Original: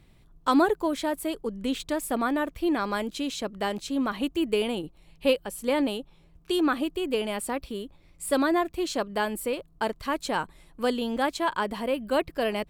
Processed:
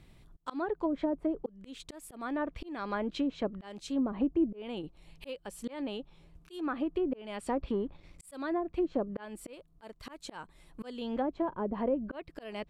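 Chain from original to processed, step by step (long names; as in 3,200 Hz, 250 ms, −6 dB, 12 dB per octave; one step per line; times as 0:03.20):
volume swells 536 ms
0:07.46–0:08.26: leveller curve on the samples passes 1
treble cut that deepens with the level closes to 510 Hz, closed at −25 dBFS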